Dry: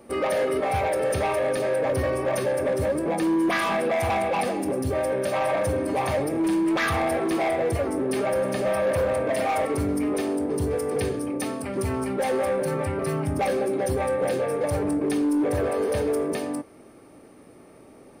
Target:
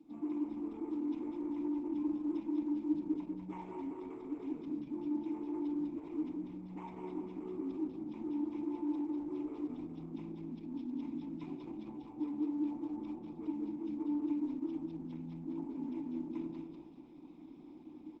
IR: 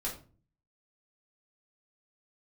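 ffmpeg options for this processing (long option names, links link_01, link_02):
-filter_complex "[0:a]lowpass=9400,bass=frequency=250:gain=-7,treble=frequency=4000:gain=4,areverse,acompressor=threshold=-38dB:ratio=16,areverse,asetrate=24750,aresample=44100,atempo=1.7818,acrusher=samples=5:mix=1:aa=0.000001,asplit=3[link_01][link_02][link_03];[link_01]bandpass=frequency=300:width_type=q:width=8,volume=0dB[link_04];[link_02]bandpass=frequency=870:width_type=q:width=8,volume=-6dB[link_05];[link_03]bandpass=frequency=2240:width_type=q:width=8,volume=-9dB[link_06];[link_04][link_05][link_06]amix=inputs=3:normalize=0,aecho=1:1:195|390|585|780|975:0.562|0.219|0.0855|0.0334|0.013,asplit=2[link_07][link_08];[1:a]atrim=start_sample=2205,lowpass=2300[link_09];[link_08][link_09]afir=irnorm=-1:irlink=0,volume=-11.5dB[link_10];[link_07][link_10]amix=inputs=2:normalize=0,volume=6dB" -ar 48000 -c:a libopus -b:a 12k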